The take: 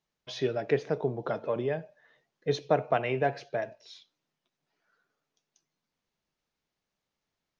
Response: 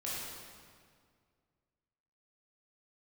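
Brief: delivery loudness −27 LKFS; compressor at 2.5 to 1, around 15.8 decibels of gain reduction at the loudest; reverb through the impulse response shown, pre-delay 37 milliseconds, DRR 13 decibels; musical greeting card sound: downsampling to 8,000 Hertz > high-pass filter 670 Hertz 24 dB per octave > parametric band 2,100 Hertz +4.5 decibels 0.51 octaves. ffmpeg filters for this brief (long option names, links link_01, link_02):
-filter_complex "[0:a]acompressor=threshold=-45dB:ratio=2.5,asplit=2[link_01][link_02];[1:a]atrim=start_sample=2205,adelay=37[link_03];[link_02][link_03]afir=irnorm=-1:irlink=0,volume=-16dB[link_04];[link_01][link_04]amix=inputs=2:normalize=0,aresample=8000,aresample=44100,highpass=frequency=670:width=0.5412,highpass=frequency=670:width=1.3066,equalizer=frequency=2100:width_type=o:width=0.51:gain=4.5,volume=22dB"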